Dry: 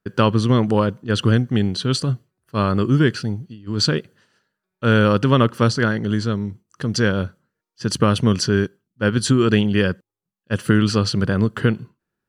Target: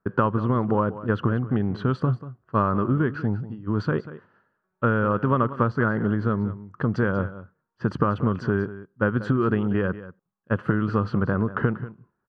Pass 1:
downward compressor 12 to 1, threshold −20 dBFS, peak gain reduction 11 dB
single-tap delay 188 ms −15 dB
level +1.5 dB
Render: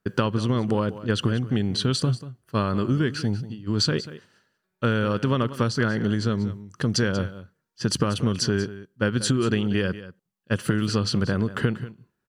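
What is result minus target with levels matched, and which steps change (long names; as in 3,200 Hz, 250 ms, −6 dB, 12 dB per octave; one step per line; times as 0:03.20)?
1,000 Hz band −5.0 dB
add after downward compressor: low-pass with resonance 1,200 Hz, resonance Q 2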